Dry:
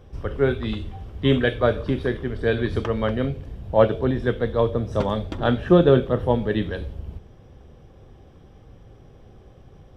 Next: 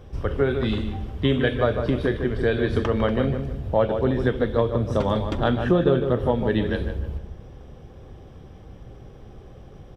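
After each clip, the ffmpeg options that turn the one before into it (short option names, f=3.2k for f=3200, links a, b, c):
-filter_complex "[0:a]acompressor=threshold=-22dB:ratio=3,asplit=2[a][b];[b]adelay=152,lowpass=f=2k:p=1,volume=-7dB,asplit=2[c][d];[d]adelay=152,lowpass=f=2k:p=1,volume=0.37,asplit=2[e][f];[f]adelay=152,lowpass=f=2k:p=1,volume=0.37,asplit=2[g][h];[h]adelay=152,lowpass=f=2k:p=1,volume=0.37[i];[a][c][e][g][i]amix=inputs=5:normalize=0,volume=3.5dB"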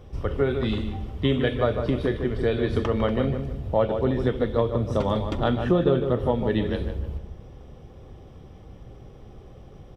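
-af "bandreject=f=1.6k:w=9.6,volume=-1.5dB"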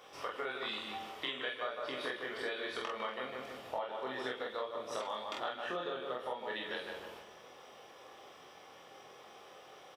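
-filter_complex "[0:a]highpass=940,acompressor=threshold=-42dB:ratio=6,asplit=2[a][b];[b]aecho=0:1:23|47:0.668|0.708[c];[a][c]amix=inputs=2:normalize=0,volume=3.5dB"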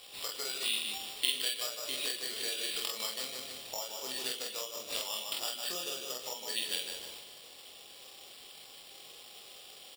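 -af "aexciter=amount=2:drive=9.9:freq=7.2k,acrusher=samples=7:mix=1:aa=0.000001,highshelf=f=2.3k:t=q:w=1.5:g=13,volume=-4.5dB"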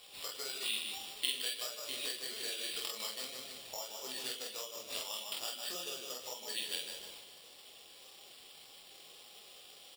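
-af "flanger=delay=4.6:depth=7.7:regen=-42:speed=1.7:shape=sinusoidal"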